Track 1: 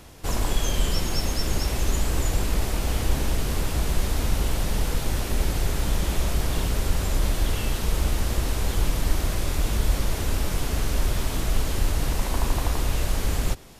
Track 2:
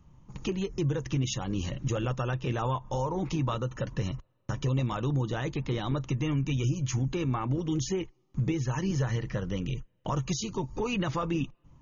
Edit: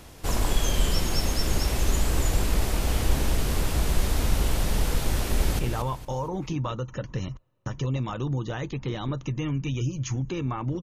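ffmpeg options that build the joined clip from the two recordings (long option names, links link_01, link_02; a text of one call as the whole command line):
ffmpeg -i cue0.wav -i cue1.wav -filter_complex "[0:a]apad=whole_dur=10.82,atrim=end=10.82,atrim=end=5.592[link_01];[1:a]atrim=start=2.418:end=7.65[link_02];[link_01][link_02]acrossfade=duration=0.004:curve1=hsin:curve2=hsin,asplit=2[link_03][link_04];[link_04]afade=type=in:start_time=5.33:duration=0.01,afade=type=out:start_time=5.59:duration=0.01,aecho=0:1:230|460|690|920:0.446684|0.156339|0.0547187|0.0191516[link_05];[link_03][link_05]amix=inputs=2:normalize=0" out.wav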